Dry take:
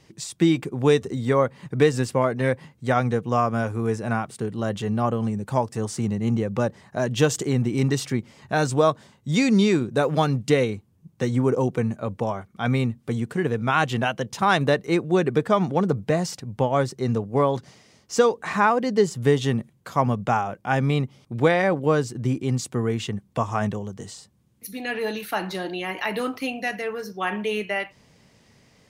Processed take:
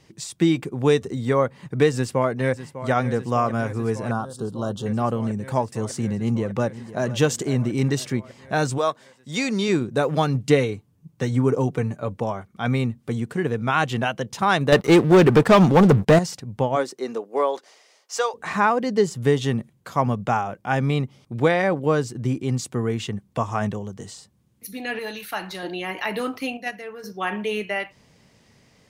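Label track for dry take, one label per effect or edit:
1.930000	2.910000	echo throw 0.6 s, feedback 85%, level -13 dB
4.110000	4.860000	Chebyshev band-stop 1300–3500 Hz
6.190000	7.070000	echo throw 0.5 s, feedback 40%, level -15.5 dB
8.770000	9.680000	HPF 780 Hz -> 370 Hz 6 dB/oct
10.340000	12.120000	comb 6.9 ms, depth 39%
14.720000	16.190000	sample leveller passes 3
16.750000	18.330000	HPF 240 Hz -> 610 Hz 24 dB/oct
24.990000	25.630000	bell 310 Hz -7 dB 2.7 oct
26.570000	27.040000	gate -26 dBFS, range -7 dB

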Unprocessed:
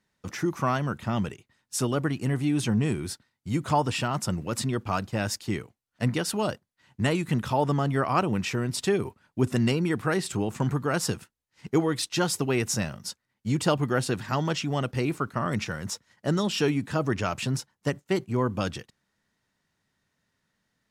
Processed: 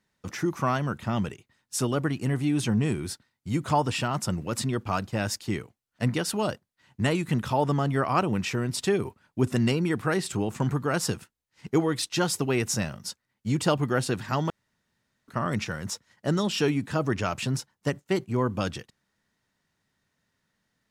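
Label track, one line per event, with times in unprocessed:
14.500000	15.280000	room tone

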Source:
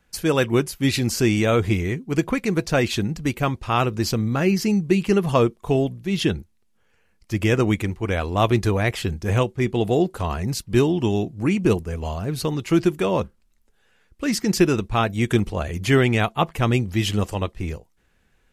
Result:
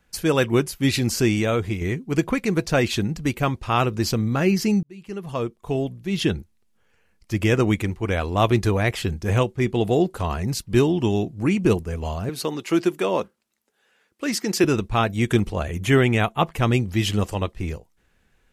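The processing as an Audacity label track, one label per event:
1.180000	1.810000	fade out, to -7 dB
4.830000	6.360000	fade in
12.290000	14.640000	HPF 260 Hz
15.650000	16.400000	bell 4700 Hz -12 dB 0.3 oct

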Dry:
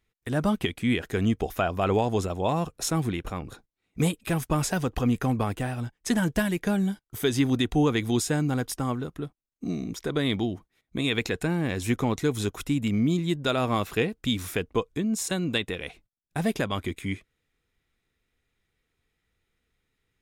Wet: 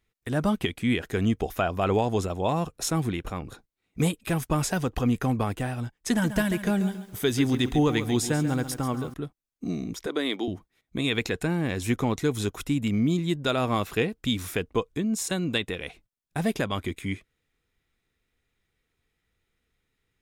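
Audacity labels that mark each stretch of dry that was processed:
6.080000	9.140000	lo-fi delay 0.138 s, feedback 35%, word length 8-bit, level -11 dB
10.060000	10.480000	Chebyshev high-pass 290 Hz, order 3

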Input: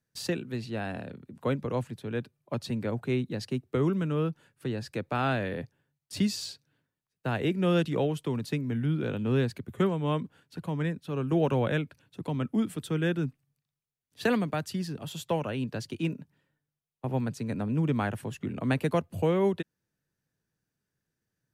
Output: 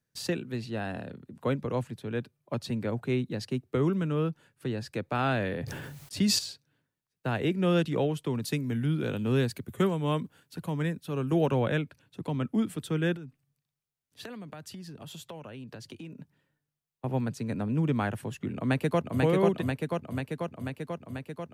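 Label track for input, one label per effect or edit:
0.700000	1.360000	notch 2300 Hz
5.190000	6.390000	sustainer at most 30 dB/s
8.410000	11.450000	high shelf 4800 Hz -> 8300 Hz +11 dB
13.160000	16.200000	compressor, threshold -40 dBFS
18.550000	19.220000	echo throw 0.49 s, feedback 75%, level -2 dB

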